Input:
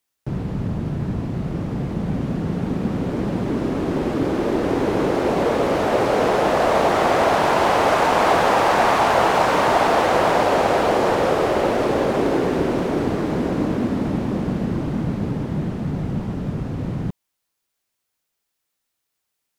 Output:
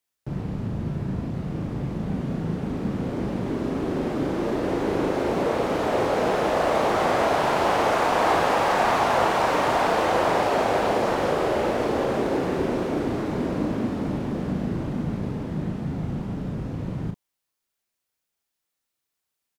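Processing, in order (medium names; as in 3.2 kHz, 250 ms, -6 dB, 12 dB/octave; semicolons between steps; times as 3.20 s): doubling 37 ms -5 dB; trim -5.5 dB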